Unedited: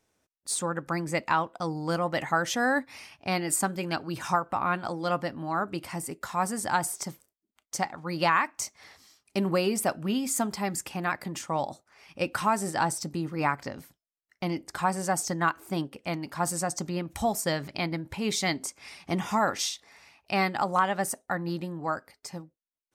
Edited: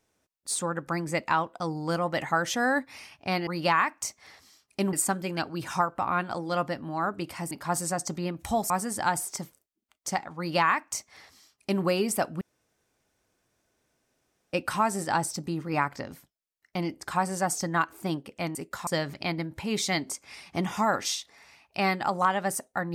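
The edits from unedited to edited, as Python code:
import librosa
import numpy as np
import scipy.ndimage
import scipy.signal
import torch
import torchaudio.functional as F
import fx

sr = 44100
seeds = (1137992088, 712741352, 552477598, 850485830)

y = fx.edit(x, sr, fx.swap(start_s=6.05, length_s=0.32, other_s=16.22, other_length_s=1.19),
    fx.duplicate(start_s=8.04, length_s=1.46, to_s=3.47),
    fx.room_tone_fill(start_s=10.08, length_s=2.12), tone=tone)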